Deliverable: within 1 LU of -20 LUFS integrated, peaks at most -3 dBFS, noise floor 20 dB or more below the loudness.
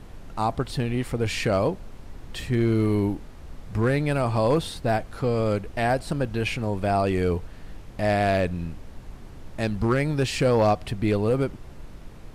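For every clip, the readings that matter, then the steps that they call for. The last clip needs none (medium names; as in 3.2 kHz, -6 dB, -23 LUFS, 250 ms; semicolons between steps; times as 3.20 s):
clipped samples 0.3%; clipping level -13.5 dBFS; noise floor -43 dBFS; noise floor target -45 dBFS; loudness -25.0 LUFS; peak level -13.5 dBFS; loudness target -20.0 LUFS
-> clip repair -13.5 dBFS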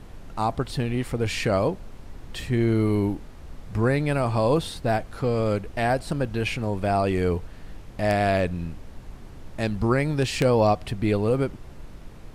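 clipped samples 0.0%; noise floor -43 dBFS; noise floor target -45 dBFS
-> noise print and reduce 6 dB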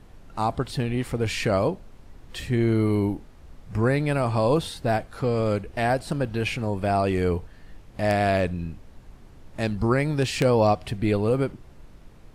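noise floor -49 dBFS; loudness -24.5 LUFS; peak level -4.5 dBFS; loudness target -20.0 LUFS
-> trim +4.5 dB; peak limiter -3 dBFS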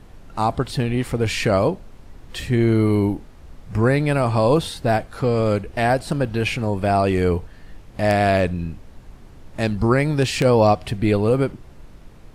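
loudness -20.0 LUFS; peak level -3.0 dBFS; noise floor -44 dBFS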